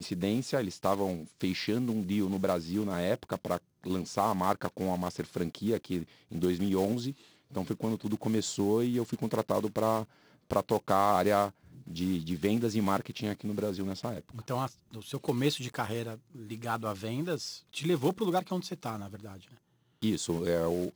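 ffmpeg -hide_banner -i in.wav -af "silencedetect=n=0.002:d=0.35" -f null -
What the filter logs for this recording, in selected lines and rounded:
silence_start: 19.57
silence_end: 20.02 | silence_duration: 0.45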